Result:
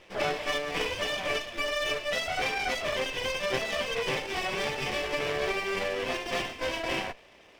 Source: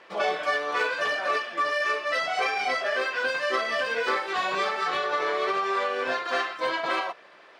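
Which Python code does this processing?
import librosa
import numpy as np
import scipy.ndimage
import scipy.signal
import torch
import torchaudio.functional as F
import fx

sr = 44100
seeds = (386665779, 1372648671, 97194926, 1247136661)

y = fx.lower_of_two(x, sr, delay_ms=0.36)
y = y * librosa.db_to_amplitude(-1.5)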